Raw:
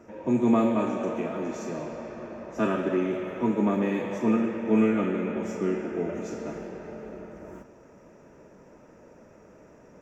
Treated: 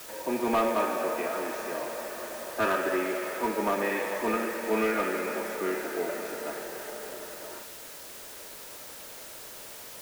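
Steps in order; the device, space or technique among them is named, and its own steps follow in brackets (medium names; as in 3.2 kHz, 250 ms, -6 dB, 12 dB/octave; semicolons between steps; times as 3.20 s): drive-through speaker (band-pass 530–3300 Hz; peaking EQ 1.7 kHz +5 dB 0.55 oct; hard clipper -24 dBFS, distortion -18 dB; white noise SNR 13 dB); trim +4 dB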